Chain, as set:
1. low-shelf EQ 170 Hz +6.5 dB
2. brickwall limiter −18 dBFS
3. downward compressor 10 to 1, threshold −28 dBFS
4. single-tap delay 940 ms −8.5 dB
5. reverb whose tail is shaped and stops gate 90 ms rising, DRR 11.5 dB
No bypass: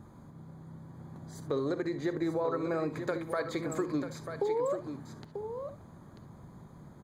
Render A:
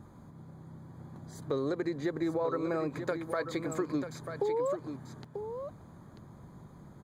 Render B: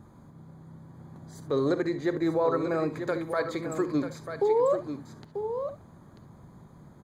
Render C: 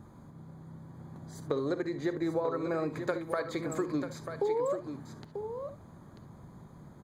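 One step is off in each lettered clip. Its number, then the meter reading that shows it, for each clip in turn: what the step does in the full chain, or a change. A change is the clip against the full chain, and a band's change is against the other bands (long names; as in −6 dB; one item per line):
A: 5, echo-to-direct ratio −6.5 dB to −8.5 dB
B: 3, average gain reduction 1.5 dB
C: 2, change in crest factor +3.5 dB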